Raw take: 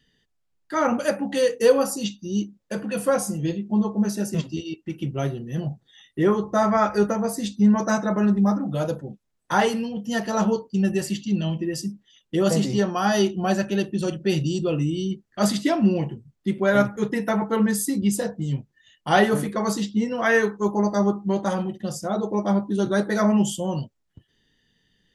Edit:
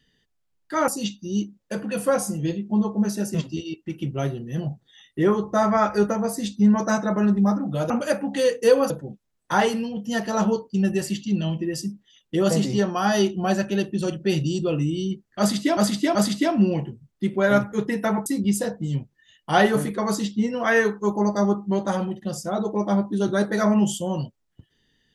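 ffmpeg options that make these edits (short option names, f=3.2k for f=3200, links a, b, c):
-filter_complex "[0:a]asplit=7[a][b][c][d][e][f][g];[a]atrim=end=0.882[h];[b]atrim=start=1.878:end=8.902[i];[c]atrim=start=0.878:end=1.882[j];[d]atrim=start=8.898:end=15.772[k];[e]atrim=start=15.388:end=15.772[l];[f]atrim=start=15.388:end=17.502[m];[g]atrim=start=17.838[n];[h][i]acrossfade=d=0.004:c1=hsin:c2=hsin[o];[o][j]acrossfade=d=0.004:c1=hsin:c2=hsin[p];[p][k]acrossfade=d=0.004:c1=hsin:c2=hsin[q];[q][l]acrossfade=d=0.004:c1=hsin:c2=hsin[r];[r][m]acrossfade=d=0.004:c1=hsin:c2=hsin[s];[s][n]acrossfade=d=0.004:c1=hsin:c2=hsin"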